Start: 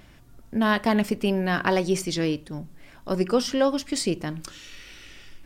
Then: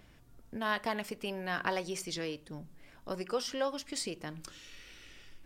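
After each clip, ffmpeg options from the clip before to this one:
ffmpeg -i in.wav -filter_complex "[0:a]equalizer=frequency=470:width_type=o:width=0.21:gain=4,acrossover=split=550[link_01][link_02];[link_01]acompressor=threshold=-32dB:ratio=6[link_03];[link_03][link_02]amix=inputs=2:normalize=0,volume=-8dB" out.wav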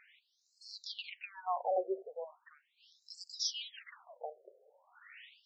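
ffmpeg -i in.wav -af "afftfilt=real='re*between(b*sr/1024,510*pow(5900/510,0.5+0.5*sin(2*PI*0.39*pts/sr))/1.41,510*pow(5900/510,0.5+0.5*sin(2*PI*0.39*pts/sr))*1.41)':imag='im*between(b*sr/1024,510*pow(5900/510,0.5+0.5*sin(2*PI*0.39*pts/sr))/1.41,510*pow(5900/510,0.5+0.5*sin(2*PI*0.39*pts/sr))*1.41)':win_size=1024:overlap=0.75,volume=5.5dB" out.wav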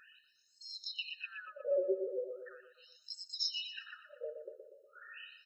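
ffmpeg -i in.wav -filter_complex "[0:a]asplit=2[link_01][link_02];[link_02]adelay=120,lowpass=frequency=3000:poles=1,volume=-8dB,asplit=2[link_03][link_04];[link_04]adelay=120,lowpass=frequency=3000:poles=1,volume=0.5,asplit=2[link_05][link_06];[link_06]adelay=120,lowpass=frequency=3000:poles=1,volume=0.5,asplit=2[link_07][link_08];[link_08]adelay=120,lowpass=frequency=3000:poles=1,volume=0.5,asplit=2[link_09][link_10];[link_10]adelay=120,lowpass=frequency=3000:poles=1,volume=0.5,asplit=2[link_11][link_12];[link_12]adelay=120,lowpass=frequency=3000:poles=1,volume=0.5[link_13];[link_03][link_05][link_07][link_09][link_11][link_13]amix=inputs=6:normalize=0[link_14];[link_01][link_14]amix=inputs=2:normalize=0,acompressor=threshold=-42dB:ratio=1.5,afftfilt=real='re*eq(mod(floor(b*sr/1024/620),2),0)':imag='im*eq(mod(floor(b*sr/1024/620),2),0)':win_size=1024:overlap=0.75,volume=6.5dB" out.wav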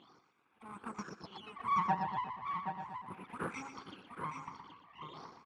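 ffmpeg -i in.wav -af "aeval=exprs='abs(val(0))':channel_layout=same,highpass=210,lowpass=2200,aecho=1:1:774:0.422,volume=8dB" out.wav

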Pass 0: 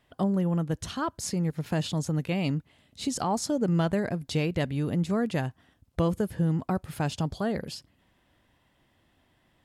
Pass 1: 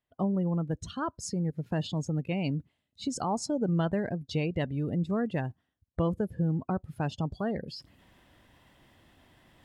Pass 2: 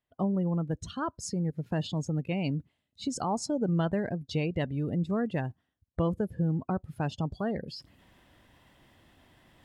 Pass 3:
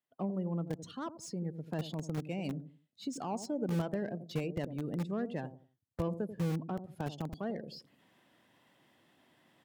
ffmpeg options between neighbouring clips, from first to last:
ffmpeg -i in.wav -af "afftdn=noise_reduction=18:noise_floor=-38,areverse,acompressor=mode=upward:threshold=-36dB:ratio=2.5,areverse,volume=-2.5dB" out.wav
ffmpeg -i in.wav -af anull out.wav
ffmpeg -i in.wav -filter_complex "[0:a]acrossover=split=130|780[link_01][link_02][link_03];[link_01]acrusher=bits=5:mix=0:aa=0.000001[link_04];[link_02]aecho=1:1:88|176|264:0.316|0.0854|0.0231[link_05];[link_03]asoftclip=type=tanh:threshold=-36dB[link_06];[link_04][link_05][link_06]amix=inputs=3:normalize=0,volume=-5.5dB" out.wav

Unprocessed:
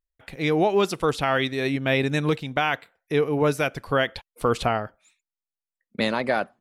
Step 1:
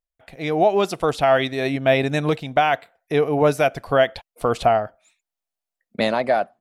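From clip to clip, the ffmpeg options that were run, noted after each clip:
ffmpeg -i in.wav -af "equalizer=frequency=680:width=3.3:gain=11,dynaudnorm=framelen=120:gausssize=9:maxgain=11.5dB,volume=-4.5dB" out.wav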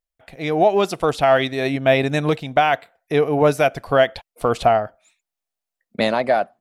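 ffmpeg -i in.wav -af "aeval=exprs='0.562*(cos(1*acos(clip(val(0)/0.562,-1,1)))-cos(1*PI/2))+0.00355*(cos(7*acos(clip(val(0)/0.562,-1,1)))-cos(7*PI/2))':channel_layout=same,volume=1.5dB" out.wav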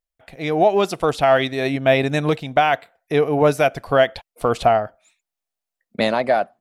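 ffmpeg -i in.wav -af anull out.wav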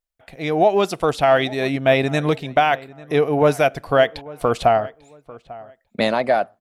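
ffmpeg -i in.wav -filter_complex "[0:a]asplit=2[link_01][link_02];[link_02]adelay=845,lowpass=frequency=2200:poles=1,volume=-20dB,asplit=2[link_03][link_04];[link_04]adelay=845,lowpass=frequency=2200:poles=1,volume=0.26[link_05];[link_01][link_03][link_05]amix=inputs=3:normalize=0" out.wav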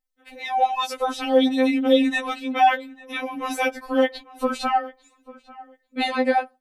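ffmpeg -i in.wav -af "afftfilt=real='re*3.46*eq(mod(b,12),0)':imag='im*3.46*eq(mod(b,12),0)':win_size=2048:overlap=0.75,volume=1dB" out.wav

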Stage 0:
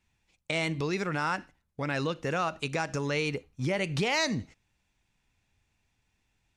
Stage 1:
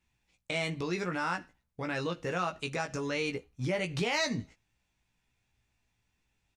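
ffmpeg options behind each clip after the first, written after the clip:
ffmpeg -i in.wav -filter_complex "[0:a]asplit=2[link_01][link_02];[link_02]adelay=17,volume=-4.5dB[link_03];[link_01][link_03]amix=inputs=2:normalize=0,volume=-4dB" out.wav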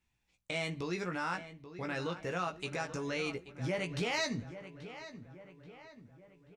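ffmpeg -i in.wav -filter_complex "[0:a]asplit=2[link_01][link_02];[link_02]adelay=833,lowpass=frequency=2700:poles=1,volume=-12.5dB,asplit=2[link_03][link_04];[link_04]adelay=833,lowpass=frequency=2700:poles=1,volume=0.52,asplit=2[link_05][link_06];[link_06]adelay=833,lowpass=frequency=2700:poles=1,volume=0.52,asplit=2[link_07][link_08];[link_08]adelay=833,lowpass=frequency=2700:poles=1,volume=0.52,asplit=2[link_09][link_10];[link_10]adelay=833,lowpass=frequency=2700:poles=1,volume=0.52[link_11];[link_01][link_03][link_05][link_07][link_09][link_11]amix=inputs=6:normalize=0,volume=-3.5dB" out.wav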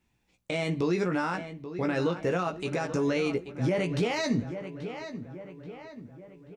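ffmpeg -i in.wav -af "alimiter=level_in=4dB:limit=-24dB:level=0:latency=1:release=41,volume=-4dB,equalizer=frequency=310:width=0.45:gain=8.5,volume=4dB" out.wav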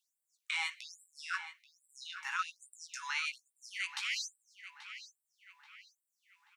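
ffmpeg -i in.wav -af "afftfilt=real='re*gte(b*sr/1024,760*pow(7600/760,0.5+0.5*sin(2*PI*1.2*pts/sr)))':imag='im*gte(b*sr/1024,760*pow(7600/760,0.5+0.5*sin(2*PI*1.2*pts/sr)))':win_size=1024:overlap=0.75,volume=1dB" out.wav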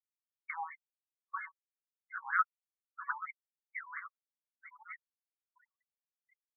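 ffmpeg -i in.wav -af "afftfilt=real='re*gte(hypot(re,im),0.00501)':imag='im*gte(hypot(re,im),0.00501)':win_size=1024:overlap=0.75,afftfilt=real='re*between(b*sr/1024,780*pow(1600/780,0.5+0.5*sin(2*PI*4.3*pts/sr))/1.41,780*pow(1600/780,0.5+0.5*sin(2*PI*4.3*pts/sr))*1.41)':imag='im*between(b*sr/1024,780*pow(1600/780,0.5+0.5*sin(2*PI*4.3*pts/sr))/1.41,780*pow(1600/780,0.5+0.5*sin(2*PI*4.3*pts/sr))*1.41)':win_size=1024:overlap=0.75,volume=6.5dB" out.wav

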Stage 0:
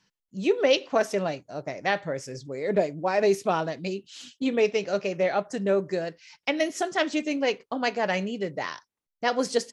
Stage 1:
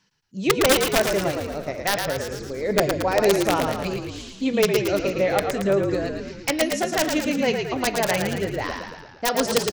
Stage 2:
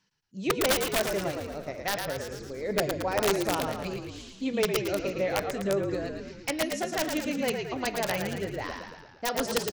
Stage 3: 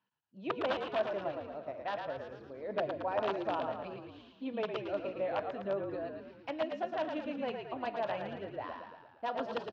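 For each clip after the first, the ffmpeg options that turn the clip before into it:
ffmpeg -i in.wav -filter_complex "[0:a]aeval=exprs='(mod(4.47*val(0)+1,2)-1)/4.47':channel_layout=same,bandreject=frequency=362.7:width_type=h:width=4,bandreject=frequency=725.4:width_type=h:width=4,bandreject=frequency=1088.1:width_type=h:width=4,bandreject=frequency=1450.8:width_type=h:width=4,bandreject=frequency=1813.5:width_type=h:width=4,bandreject=frequency=2176.2:width_type=h:width=4,bandreject=frequency=2538.9:width_type=h:width=4,bandreject=frequency=2901.6:width_type=h:width=4,bandreject=frequency=3264.3:width_type=h:width=4,bandreject=frequency=3627:width_type=h:width=4,bandreject=frequency=3989.7:width_type=h:width=4,bandreject=frequency=4352.4:width_type=h:width=4,bandreject=frequency=4715.1:width_type=h:width=4,bandreject=frequency=5077.8:width_type=h:width=4,bandreject=frequency=5440.5:width_type=h:width=4,asplit=9[link_01][link_02][link_03][link_04][link_05][link_06][link_07][link_08][link_09];[link_02]adelay=112,afreqshift=-46,volume=-5dB[link_10];[link_03]adelay=224,afreqshift=-92,volume=-9.6dB[link_11];[link_04]adelay=336,afreqshift=-138,volume=-14.2dB[link_12];[link_05]adelay=448,afreqshift=-184,volume=-18.7dB[link_13];[link_06]adelay=560,afreqshift=-230,volume=-23.3dB[link_14];[link_07]adelay=672,afreqshift=-276,volume=-27.9dB[link_15];[link_08]adelay=784,afreqshift=-322,volume=-32.5dB[link_16];[link_09]adelay=896,afreqshift=-368,volume=-37.1dB[link_17];[link_01][link_10][link_11][link_12][link_13][link_14][link_15][link_16][link_17]amix=inputs=9:normalize=0,volume=2.5dB" out.wav
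ffmpeg -i in.wav -af "aeval=exprs='(mod(3.35*val(0)+1,2)-1)/3.35':channel_layout=same,volume=-7dB" out.wav
ffmpeg -i in.wav -af "highpass=120,equalizer=frequency=170:width_type=q:width=4:gain=-9,equalizer=frequency=410:width_type=q:width=4:gain=-4,equalizer=frequency=660:width_type=q:width=4:gain=6,equalizer=frequency=980:width_type=q:width=4:gain=5,equalizer=frequency=2100:width_type=q:width=4:gain=-9,lowpass=frequency=3100:width=0.5412,lowpass=frequency=3100:width=1.3066,volume=-7.5dB" out.wav

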